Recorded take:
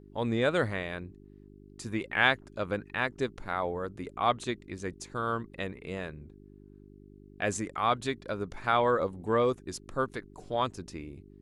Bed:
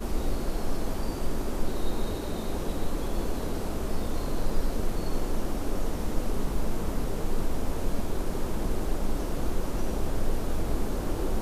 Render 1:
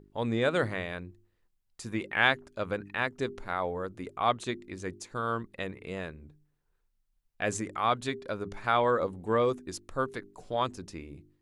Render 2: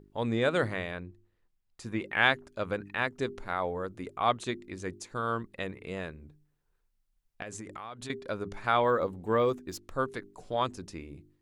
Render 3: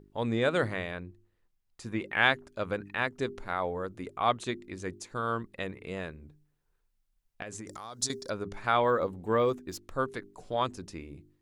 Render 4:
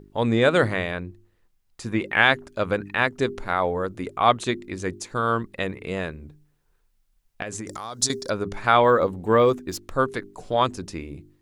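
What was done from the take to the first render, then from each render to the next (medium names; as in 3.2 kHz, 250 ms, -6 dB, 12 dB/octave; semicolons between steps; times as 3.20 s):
de-hum 50 Hz, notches 8
0.91–2.06 s: treble shelf 5.5 kHz -8.5 dB; 7.42–8.10 s: compression 12:1, threshold -37 dBFS; 8.83–9.90 s: decimation joined by straight lines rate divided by 2×
7.67–8.30 s: resonant high shelf 3.8 kHz +13 dB, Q 3
trim +8.5 dB; peak limiter -2 dBFS, peak gain reduction 3 dB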